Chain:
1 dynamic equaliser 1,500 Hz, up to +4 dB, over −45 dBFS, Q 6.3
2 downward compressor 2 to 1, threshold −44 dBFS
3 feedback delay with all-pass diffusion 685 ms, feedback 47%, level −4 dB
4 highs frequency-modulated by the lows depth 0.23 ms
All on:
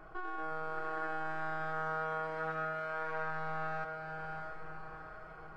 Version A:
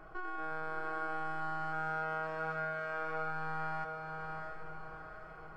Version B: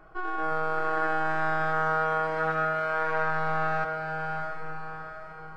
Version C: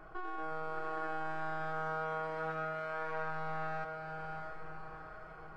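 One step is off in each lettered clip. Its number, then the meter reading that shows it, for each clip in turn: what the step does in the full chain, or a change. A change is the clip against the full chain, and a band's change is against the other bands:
4, 500 Hz band −2.0 dB
2, average gain reduction 7.0 dB
1, 2 kHz band −2.5 dB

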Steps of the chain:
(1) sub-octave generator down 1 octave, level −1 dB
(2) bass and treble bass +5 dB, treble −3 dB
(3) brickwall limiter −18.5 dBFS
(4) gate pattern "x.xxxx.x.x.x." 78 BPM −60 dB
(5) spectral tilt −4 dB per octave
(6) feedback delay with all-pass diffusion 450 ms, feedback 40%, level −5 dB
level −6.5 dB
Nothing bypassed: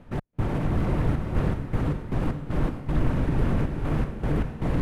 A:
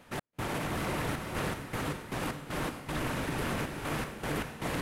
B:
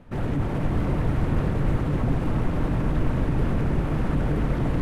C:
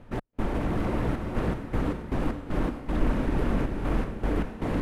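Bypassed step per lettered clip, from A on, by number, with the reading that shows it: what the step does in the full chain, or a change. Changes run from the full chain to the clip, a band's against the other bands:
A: 5, 125 Hz band −12.0 dB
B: 4, change in crest factor −2.5 dB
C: 1, 125 Hz band −6.5 dB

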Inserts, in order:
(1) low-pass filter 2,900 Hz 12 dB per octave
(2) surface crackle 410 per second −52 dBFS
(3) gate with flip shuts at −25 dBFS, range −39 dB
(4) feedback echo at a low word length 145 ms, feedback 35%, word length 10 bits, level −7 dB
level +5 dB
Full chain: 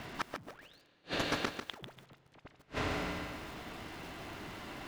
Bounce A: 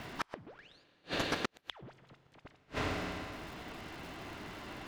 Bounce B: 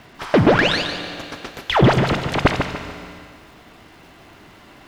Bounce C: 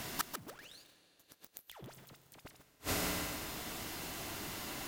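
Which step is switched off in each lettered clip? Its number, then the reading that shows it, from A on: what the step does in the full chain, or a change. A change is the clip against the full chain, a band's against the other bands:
4, change in momentary loudness spread −1 LU
3, change in momentary loudness spread −7 LU
1, 8 kHz band +13.5 dB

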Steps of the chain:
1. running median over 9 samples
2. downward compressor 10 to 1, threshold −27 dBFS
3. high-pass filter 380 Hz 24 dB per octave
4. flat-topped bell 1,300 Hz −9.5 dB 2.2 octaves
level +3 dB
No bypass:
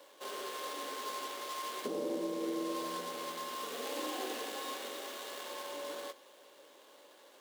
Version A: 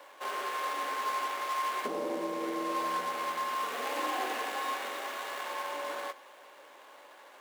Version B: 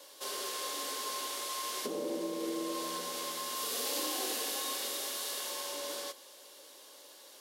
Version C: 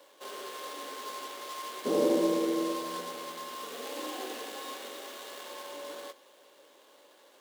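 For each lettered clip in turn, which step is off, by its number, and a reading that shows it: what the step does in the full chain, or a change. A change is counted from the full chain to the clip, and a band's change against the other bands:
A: 4, 1 kHz band +8.0 dB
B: 1, 8 kHz band +10.0 dB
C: 2, change in crest factor +5.0 dB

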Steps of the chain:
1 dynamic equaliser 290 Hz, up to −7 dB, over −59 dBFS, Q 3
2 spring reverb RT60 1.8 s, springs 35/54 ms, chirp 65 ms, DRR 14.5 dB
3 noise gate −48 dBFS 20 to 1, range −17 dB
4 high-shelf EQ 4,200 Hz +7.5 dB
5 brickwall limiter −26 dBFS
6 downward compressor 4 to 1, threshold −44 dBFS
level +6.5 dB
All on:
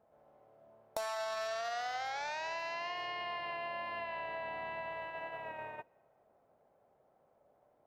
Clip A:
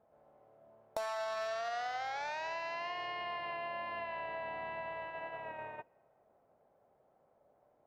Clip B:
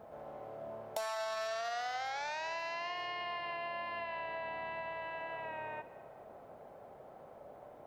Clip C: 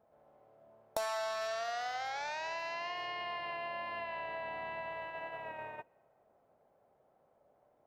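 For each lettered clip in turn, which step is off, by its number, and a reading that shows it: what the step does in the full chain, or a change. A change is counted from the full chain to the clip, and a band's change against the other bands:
4, 4 kHz band −2.5 dB
3, change in momentary loudness spread +10 LU
5, change in crest factor +4.0 dB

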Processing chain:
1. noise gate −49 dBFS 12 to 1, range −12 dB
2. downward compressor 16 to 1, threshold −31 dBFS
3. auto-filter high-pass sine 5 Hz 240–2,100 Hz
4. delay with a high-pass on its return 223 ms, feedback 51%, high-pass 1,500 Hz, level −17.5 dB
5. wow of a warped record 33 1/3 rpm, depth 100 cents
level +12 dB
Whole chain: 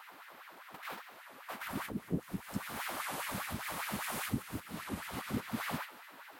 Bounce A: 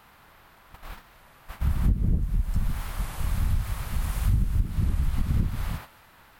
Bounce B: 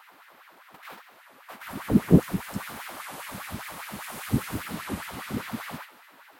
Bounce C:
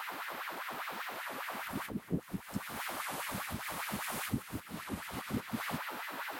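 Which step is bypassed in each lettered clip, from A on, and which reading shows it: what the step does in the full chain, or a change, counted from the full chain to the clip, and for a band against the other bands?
3, 125 Hz band +19.0 dB
2, average gain reduction 6.0 dB
1, change in momentary loudness spread −10 LU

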